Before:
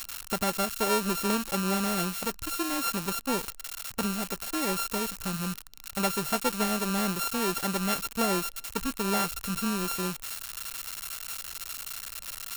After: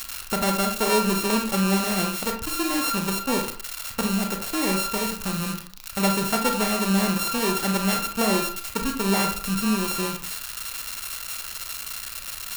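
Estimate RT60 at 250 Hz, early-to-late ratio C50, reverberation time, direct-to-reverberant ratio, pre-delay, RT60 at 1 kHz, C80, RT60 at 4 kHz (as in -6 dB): 0.45 s, 8.0 dB, 0.45 s, 3.5 dB, 29 ms, 0.45 s, 13.0 dB, 0.25 s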